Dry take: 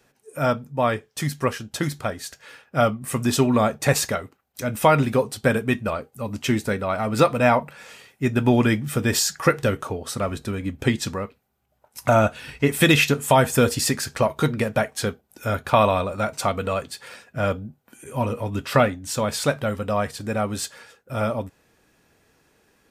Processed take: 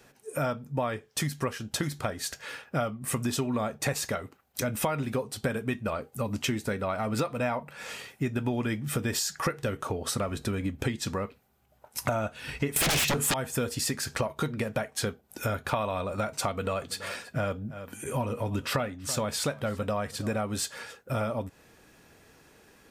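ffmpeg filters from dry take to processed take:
-filter_complex "[0:a]asettb=1/sr,asplit=3[s0][s1][s2];[s0]atrim=end=12.764[s3];[s1]atrim=start=12.76:end=13.34,asetpts=PTS-STARTPTS,afade=t=in:d=0.004:c=qsin,afade=t=out:st=0.576:d=0.004:c=qsin,aeval=exprs='0.631*sin(PI/2*6.31*val(0)/0.631)':c=same[s4];[s2]atrim=start=13.336[s5];[s3][s4]acrossfade=d=0.004:c1=hsin:c2=qsin[s6];[s6][s5]acrossfade=d=0.004:c1=qsin:c2=hsin,asettb=1/sr,asplit=3[s7][s8][s9];[s7]atrim=end=16.484[s10];[s8]atrim=start=16.48:end=20.36,asetpts=PTS-STARTPTS,afade=t=in:d=0.004:c=qsin,afade=t=out:st=3.876:d=0.004:c=qsin,aecho=1:1:330:0.0708,atrim=end_sample=171108[s11];[s9]atrim=start=20.356[s12];[s10][s11]acrossfade=d=0.004:c1=hsin:c2=qsin[s13];[s13][s12]acrossfade=d=0.004:c1=qsin:c2=hsin,acompressor=threshold=0.0251:ratio=6,volume=1.68"

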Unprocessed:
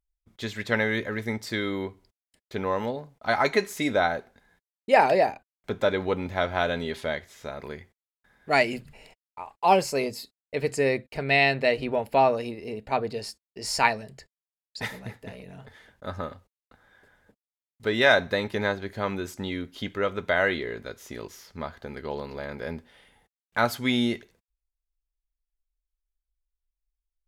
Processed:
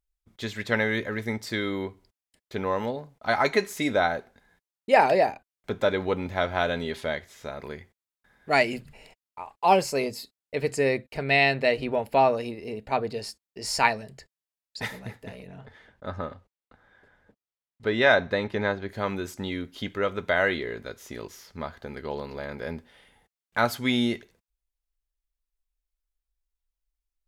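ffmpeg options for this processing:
-filter_complex "[0:a]asettb=1/sr,asplit=3[s0][s1][s2];[s0]atrim=end=15.474[s3];[s1]atrim=start=15.47:end=18.89,asetpts=PTS-STARTPTS,afade=t=in:d=0.004:c=qsin,afade=t=out:st=3.416:d=0.004:c=qsin,aemphasis=mode=reproduction:type=50fm[s4];[s2]atrim=start=18.886[s5];[s3][s4]acrossfade=d=0.004:c1=hsin:c2=qsin[s6];[s6][s5]acrossfade=d=0.004:c1=qsin:c2=hsin"

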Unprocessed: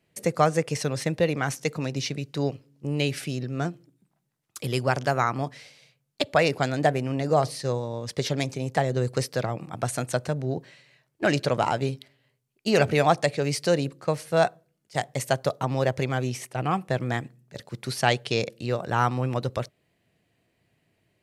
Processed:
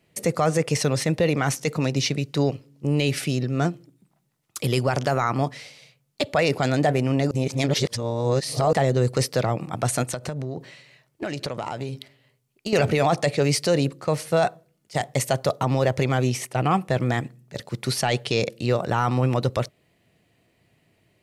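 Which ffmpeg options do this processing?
-filter_complex "[0:a]asettb=1/sr,asplit=3[s0][s1][s2];[s0]atrim=end=10.034[s3];[s1]atrim=start=10.03:end=12.73,asetpts=PTS-STARTPTS,afade=t=in:d=0.004:c=qsin,afade=t=out:st=2.696:d=0.004:c=qsin,acompressor=threshold=0.0282:ratio=10:attack=3.2:release=140:knee=1:detection=peak[s4];[s2]atrim=start=12.726[s5];[s3][s4]acrossfade=d=0.004:c1=hsin:c2=qsin[s6];[s6][s5]acrossfade=d=0.004:c1=qsin:c2=hsin,asplit=3[s7][s8][s9];[s7]atrim=end=7.312[s10];[s8]atrim=start=7.308:end=8.732,asetpts=PTS-STARTPTS,areverse[s11];[s9]atrim=start=8.728[s12];[s10][s11]acrossfade=d=0.004:c1=hsin:c2=hsin[s13];[s13][s12]acrossfade=d=0.004:c1=hsin:c2=hsin,bandreject=f=1600:w=16,alimiter=limit=0.15:level=0:latency=1:release=11,volume=2"

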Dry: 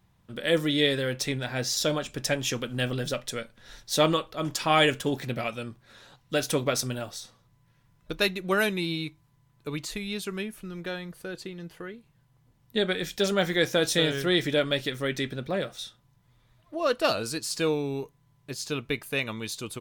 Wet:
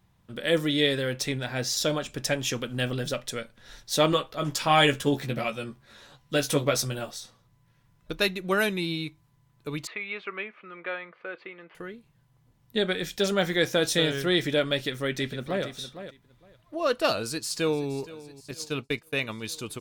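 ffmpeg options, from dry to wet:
-filter_complex "[0:a]asettb=1/sr,asplit=3[s0][s1][s2];[s0]atrim=end=4.114[s3];[s1]atrim=start=4.11:end=7.11,asetpts=PTS-STARTPTS,afade=t=in:d=0.004:c=qsin,afade=t=out:st=2.996:d=0.004:c=qsin,asplit=2[s4][s5];[s5]adelay=14,volume=0.596[s6];[s4][s6]amix=inputs=2:normalize=0,atrim=end_sample=132300[s7];[s2]atrim=start=7.106[s8];[s3][s7]acrossfade=d=0.004:c1=hsin:c2=qsin[s9];[s9][s8]acrossfade=d=0.004:c1=qsin:c2=hsin,asettb=1/sr,asplit=3[s10][s11][s12];[s10]atrim=end=9.874[s13];[s11]atrim=start=9.87:end=11.75,asetpts=PTS-STARTPTS,afade=t=in:d=0.004:c=qsin,afade=t=out:st=1.876:d=0.004:c=qsin,highpass=460,equalizer=f=550:t=q:w=4:g=3,equalizer=f=1200:t=q:w=4:g=9,equalizer=f=2200:t=q:w=4:g=9,lowpass=f=2800:w=0.5412,lowpass=f=2800:w=1.3066[s14];[s12]atrim=start=11.746[s15];[s13][s14]acrossfade=d=0.004:c1=hsin:c2=qsin[s16];[s16][s15]acrossfade=d=0.004:c1=qsin:c2=hsin,asplit=2[s17][s18];[s18]afade=t=in:st=14.74:d=0.01,afade=t=out:st=15.64:d=0.01,aecho=0:1:460|920:0.266073|0.0399109[s19];[s17][s19]amix=inputs=2:normalize=0,asplit=2[s20][s21];[s21]afade=t=in:st=17.15:d=0.01,afade=t=out:st=17.93:d=0.01,aecho=0:1:470|940|1410|1880|2350|2820|3290:0.133352|0.0866789|0.0563413|0.0366218|0.0238042|0.0154727|0.0100573[s22];[s20][s22]amix=inputs=2:normalize=0,asettb=1/sr,asplit=3[s23][s24][s25];[s23]atrim=end=18.514[s26];[s24]atrim=start=18.51:end=19.44,asetpts=PTS-STARTPTS,afade=t=in:d=0.004:c=qsin,afade=t=out:st=0.926:d=0.004:c=qsin,agate=range=0.0224:threshold=0.02:ratio=3:release=100:detection=peak[s27];[s25]atrim=start=19.436[s28];[s26][s27]acrossfade=d=0.004:c1=hsin:c2=qsin[s29];[s29][s28]acrossfade=d=0.004:c1=qsin:c2=hsin"

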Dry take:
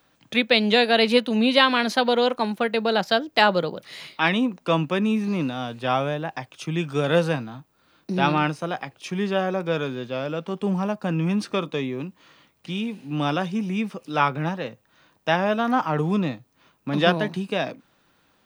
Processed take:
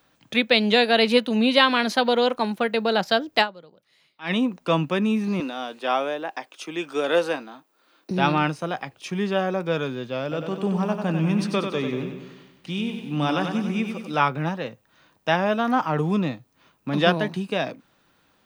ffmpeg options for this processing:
-filter_complex "[0:a]asettb=1/sr,asplit=3[s0][s1][s2];[s0]atrim=end=5.404[s3];[s1]atrim=start=5.4:end=8.11,asetpts=PTS-STARTPTS,afade=t=in:d=0.004:c=qsin,afade=t=out:st=2.706:d=0.004:c=qsin,highpass=f=280:w=0.5412,highpass=f=280:w=1.3066[s4];[s2]atrim=start=8.106[s5];[s3][s4]acrossfade=d=0.004:c1=hsin:c2=qsin[s6];[s6][s5]acrossfade=d=0.004:c1=qsin:c2=hsin,asettb=1/sr,asplit=3[s7][s8][s9];[s7]atrim=end=10.224[s10];[s8]atrim=start=10.22:end=14.15,asetpts=PTS-STARTPTS,afade=t=in:d=0.004:c=qsin,afade=t=out:st=3.926:d=0.004:c=qsin,aecho=1:1:94|188|282|376|470|564|658:0.473|0.26|0.143|0.0787|0.0433|0.0238|0.0131,atrim=end_sample=173313[s11];[s9]atrim=start=14.146[s12];[s10][s11]acrossfade=d=0.004:c1=hsin:c2=qsin[s13];[s13][s12]acrossfade=d=0.004:c1=qsin:c2=hsin,asplit=3[s14][s15][s16];[s14]atrim=end=3.74,asetpts=PTS-STARTPTS,afade=t=out:st=3.41:d=0.33:c=exp:silence=0.0749894[s17];[s15]atrim=start=3.74:end=3.98,asetpts=PTS-STARTPTS,volume=0.075[s18];[s16]atrim=start=3.98,asetpts=PTS-STARTPTS,afade=t=in:d=0.33:c=exp:silence=0.0749894[s19];[s17][s18][s19]concat=n=3:v=0:a=1"

